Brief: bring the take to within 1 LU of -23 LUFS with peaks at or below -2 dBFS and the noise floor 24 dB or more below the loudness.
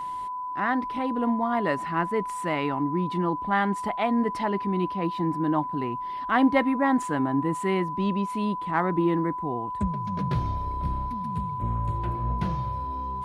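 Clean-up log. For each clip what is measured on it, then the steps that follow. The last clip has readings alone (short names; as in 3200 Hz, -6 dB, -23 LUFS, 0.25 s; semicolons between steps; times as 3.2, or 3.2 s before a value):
steady tone 1000 Hz; tone level -30 dBFS; loudness -27.0 LUFS; peak -10.5 dBFS; loudness target -23.0 LUFS
-> notch 1000 Hz, Q 30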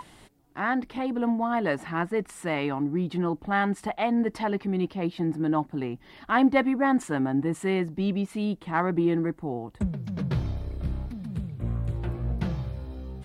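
steady tone none; loudness -28.0 LUFS; peak -11.0 dBFS; loudness target -23.0 LUFS
-> gain +5 dB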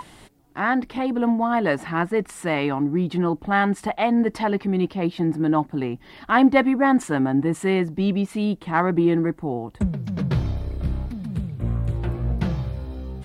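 loudness -23.0 LUFS; peak -6.0 dBFS; noise floor -49 dBFS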